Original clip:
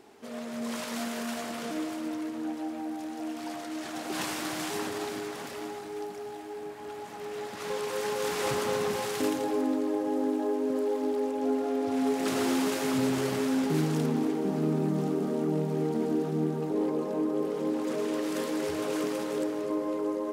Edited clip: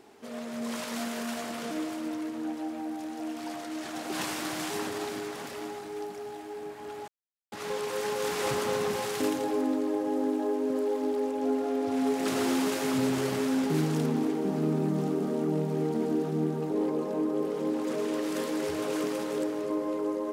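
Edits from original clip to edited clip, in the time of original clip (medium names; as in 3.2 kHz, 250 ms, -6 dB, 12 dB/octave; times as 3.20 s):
7.08–7.52 s: mute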